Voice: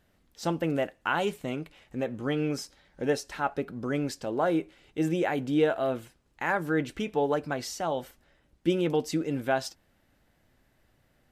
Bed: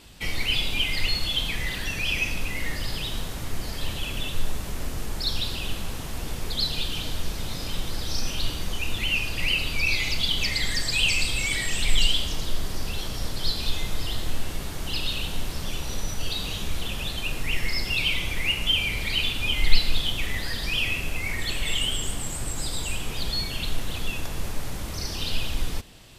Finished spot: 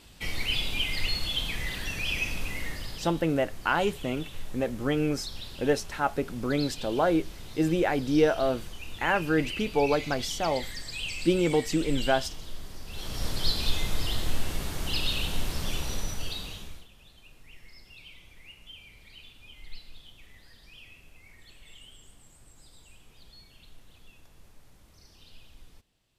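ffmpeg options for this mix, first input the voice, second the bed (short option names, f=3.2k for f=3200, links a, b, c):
-filter_complex "[0:a]adelay=2600,volume=2dB[a];[1:a]volume=8dB,afade=t=out:st=2.53:d=0.59:silence=0.375837,afade=t=in:st=12.87:d=0.42:silence=0.251189,afade=t=out:st=15.78:d=1.09:silence=0.0595662[b];[a][b]amix=inputs=2:normalize=0"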